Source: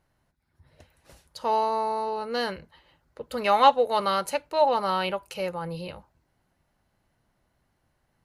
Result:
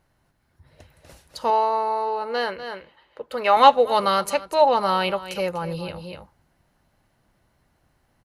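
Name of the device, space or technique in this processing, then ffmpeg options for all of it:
ducked delay: -filter_complex "[0:a]asettb=1/sr,asplit=3[s0][s1][s2];[s0]atrim=end=4.304[s3];[s1]atrim=start=4.3:end=4.81,asetpts=PTS-STARTPTS,afade=t=in:d=0.004:c=qsin,afade=t=out:st=0.506:d=0.004:c=qsin,lowpass=f=10000:w=0.5412,lowpass=f=10000:w=1.3066[s4];[s2]atrim=start=4.806[s5];[s3][s4]acrossfade=d=0.004:c1=hsin:c2=qsin[s6];[s6][s5]acrossfade=d=0.004:c1=qsin:c2=hsin,asplit=3[s7][s8][s9];[s8]adelay=244,volume=0.631[s10];[s9]apad=whole_len=374144[s11];[s10][s11]sidechaincompress=threshold=0.00708:ratio=4:attack=26:release=222[s12];[s7][s12]amix=inputs=2:normalize=0,asettb=1/sr,asplit=3[s13][s14][s15];[s13]atrim=end=1.504[s16];[s14]atrim=start=1.5:end=3.57,asetpts=PTS-STARTPTS,afade=t=in:d=0.004:c=qsin,afade=t=out:st=2.066:d=0.004:c=qsin,bass=f=250:g=-14,treble=f=4000:g=-9[s17];[s15]atrim=start=3.566[s18];[s16][s17]acrossfade=d=0.004:c1=hsin:c2=qsin[s19];[s19][s18]acrossfade=d=0.004:c1=qsin:c2=hsin,volume=1.68"

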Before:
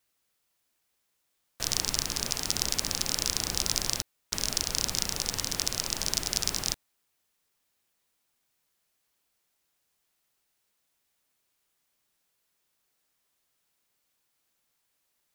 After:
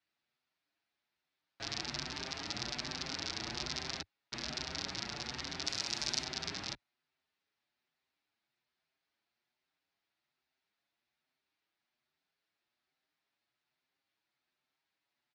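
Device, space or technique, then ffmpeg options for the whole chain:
barber-pole flanger into a guitar amplifier: -filter_complex "[0:a]asplit=3[s0][s1][s2];[s0]afade=t=out:st=5.65:d=0.02[s3];[s1]aemphasis=mode=production:type=75fm,afade=t=in:st=5.65:d=0.02,afade=t=out:st=6.23:d=0.02[s4];[s2]afade=t=in:st=6.23:d=0.02[s5];[s3][s4][s5]amix=inputs=3:normalize=0,asplit=2[s6][s7];[s7]adelay=6.8,afreqshift=1.2[s8];[s6][s8]amix=inputs=2:normalize=1,asoftclip=type=tanh:threshold=0.631,highpass=91,equalizer=f=100:t=q:w=4:g=-6,equalizer=f=190:t=q:w=4:g=-5,equalizer=f=490:t=q:w=4:g=-9,equalizer=f=1100:t=q:w=4:g=-4,equalizer=f=3100:t=q:w=4:g=-4,lowpass=f=4300:w=0.5412,lowpass=f=4300:w=1.3066"

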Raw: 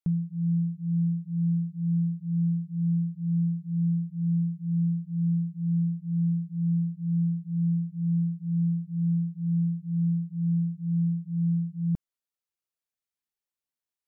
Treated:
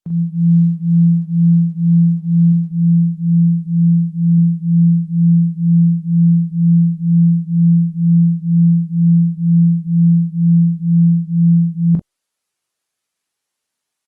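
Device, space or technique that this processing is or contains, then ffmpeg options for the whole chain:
video call: -filter_complex "[0:a]asettb=1/sr,asplit=3[s0][s1][s2];[s0]atrim=end=2.524[s3];[s1]atrim=start=2.52:end=4.38,asetpts=PTS-STARTPTS,afade=t=in:d=0.004:c=qsin,afade=t=out:st=1.856:d=0.004:c=qsin,equalizer=f=66:w=1.2:g=-6[s4];[s2]atrim=start=4.376[s5];[s3][s4]acrossfade=d=0.004:c1=hsin:c2=qsin[s6];[s6][s5]acrossfade=d=0.004:c1=qsin:c2=hsin,highpass=f=170:p=1,aecho=1:1:20|42:0.251|0.562,dynaudnorm=f=110:g=3:m=4.47,volume=1.26" -ar 48000 -c:a libopus -b:a 24k

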